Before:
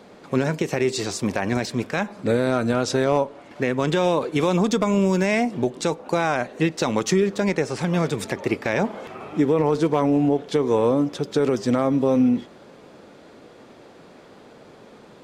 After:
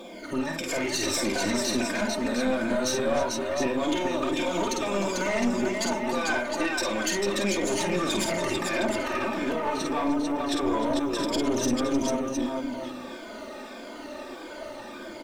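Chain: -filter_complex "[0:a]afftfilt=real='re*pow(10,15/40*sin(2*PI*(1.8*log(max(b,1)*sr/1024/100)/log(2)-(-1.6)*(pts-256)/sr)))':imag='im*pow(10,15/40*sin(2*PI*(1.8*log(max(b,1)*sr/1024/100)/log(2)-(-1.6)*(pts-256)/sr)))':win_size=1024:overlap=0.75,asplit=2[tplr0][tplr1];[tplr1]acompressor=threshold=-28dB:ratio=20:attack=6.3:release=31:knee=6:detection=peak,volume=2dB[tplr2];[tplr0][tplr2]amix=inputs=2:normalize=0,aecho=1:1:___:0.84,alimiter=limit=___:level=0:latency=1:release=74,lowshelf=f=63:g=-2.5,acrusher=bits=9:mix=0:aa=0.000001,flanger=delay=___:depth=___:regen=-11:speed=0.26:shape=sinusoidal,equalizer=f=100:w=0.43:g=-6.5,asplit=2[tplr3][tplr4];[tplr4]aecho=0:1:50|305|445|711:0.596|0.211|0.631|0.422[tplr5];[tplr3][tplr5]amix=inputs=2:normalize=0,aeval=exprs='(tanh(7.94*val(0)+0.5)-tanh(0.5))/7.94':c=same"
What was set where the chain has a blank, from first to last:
3.3, -13dB, 0.3, 4.5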